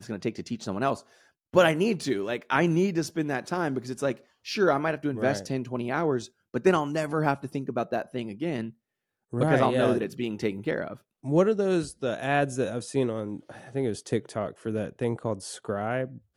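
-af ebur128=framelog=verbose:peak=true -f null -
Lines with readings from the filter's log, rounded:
Integrated loudness:
  I:         -27.8 LUFS
  Threshold: -38.0 LUFS
Loudness range:
  LRA:         3.5 LU
  Threshold: -47.9 LUFS
  LRA low:   -30.0 LUFS
  LRA high:  -26.4 LUFS
True peak:
  Peak:       -7.0 dBFS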